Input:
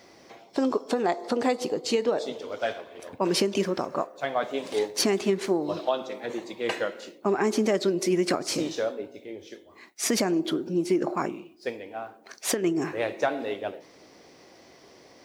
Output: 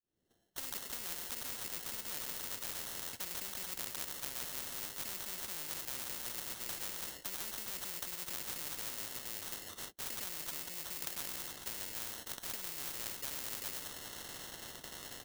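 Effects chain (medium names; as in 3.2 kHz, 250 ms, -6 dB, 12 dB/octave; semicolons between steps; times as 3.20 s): fade-in on the opening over 1.25 s; high-pass 47 Hz 12 dB/octave; bass shelf 71 Hz +10.5 dB; on a send: feedback delay 101 ms, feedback 58%, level -20 dB; on the sum: sample-rate reducer 2.4 kHz, jitter 0%; peaking EQ 990 Hz -14 dB 2.3 oct; gate -57 dBFS, range -29 dB; reverse; compression, threshold -36 dBFS, peak gain reduction 13 dB; reverse; spectrum-flattening compressor 10:1; trim +5 dB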